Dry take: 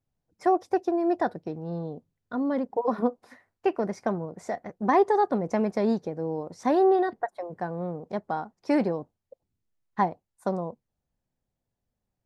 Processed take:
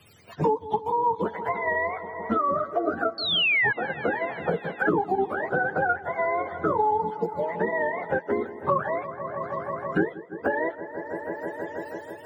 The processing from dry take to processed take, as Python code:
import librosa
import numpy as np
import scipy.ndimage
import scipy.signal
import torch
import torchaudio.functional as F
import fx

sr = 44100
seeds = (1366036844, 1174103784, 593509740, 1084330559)

p1 = fx.octave_mirror(x, sr, pivot_hz=570.0)
p2 = fx.level_steps(p1, sr, step_db=12)
p3 = p1 + (p2 * 10.0 ** (-2.5 / 20.0))
p4 = fx.spec_paint(p3, sr, seeds[0], shape='fall', start_s=3.18, length_s=0.55, low_hz=1600.0, high_hz=4500.0, level_db=-19.0)
p5 = fx.echo_wet_lowpass(p4, sr, ms=162, feedback_pct=71, hz=1800.0, wet_db=-18)
y = fx.band_squash(p5, sr, depth_pct=100)